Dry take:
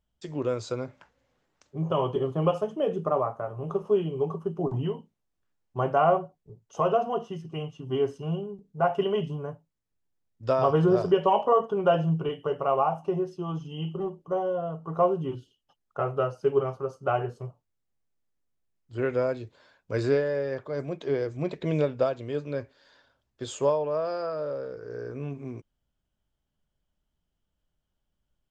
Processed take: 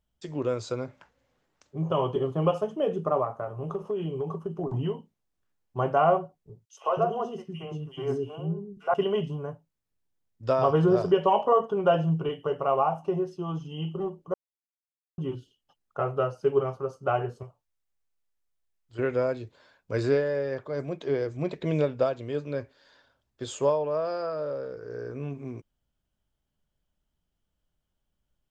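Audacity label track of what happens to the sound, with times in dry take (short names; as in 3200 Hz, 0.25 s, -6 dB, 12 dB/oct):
3.240000	4.730000	compressor, threshold -26 dBFS
6.650000	8.940000	three bands offset in time highs, mids, lows 70/180 ms, splits 390/2600 Hz
14.340000	15.180000	mute
17.430000	18.990000	bell 190 Hz -11 dB 2.6 oct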